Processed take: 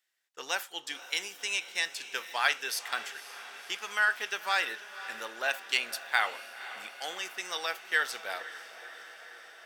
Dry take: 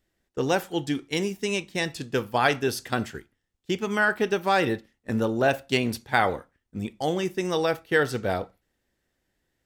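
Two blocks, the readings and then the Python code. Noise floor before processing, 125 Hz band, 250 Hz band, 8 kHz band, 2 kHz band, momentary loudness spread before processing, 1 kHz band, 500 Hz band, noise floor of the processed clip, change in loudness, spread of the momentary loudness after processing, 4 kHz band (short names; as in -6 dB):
-77 dBFS, under -35 dB, -27.5 dB, +0.5 dB, -1.5 dB, 10 LU, -7.5 dB, -17.0 dB, -52 dBFS, -5.5 dB, 16 LU, 0.0 dB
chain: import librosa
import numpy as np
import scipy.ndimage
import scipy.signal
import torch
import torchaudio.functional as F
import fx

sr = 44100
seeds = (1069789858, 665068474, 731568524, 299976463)

p1 = scipy.signal.sosfilt(scipy.signal.butter(2, 1400.0, 'highpass', fs=sr, output='sos'), x)
y = p1 + fx.echo_diffused(p1, sr, ms=521, feedback_pct=70, wet_db=-14.5, dry=0)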